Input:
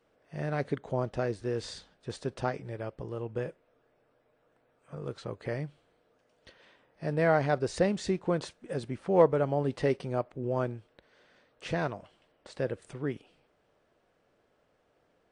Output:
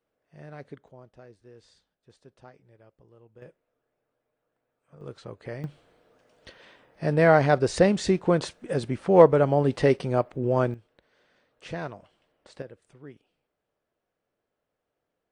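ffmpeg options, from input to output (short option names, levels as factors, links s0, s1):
-af "asetnsamples=n=441:p=0,asendcmd='0.88 volume volume -18.5dB;3.42 volume volume -10dB;5.01 volume volume -2.5dB;5.64 volume volume 7dB;10.74 volume volume -3dB;12.62 volume volume -12dB',volume=0.282"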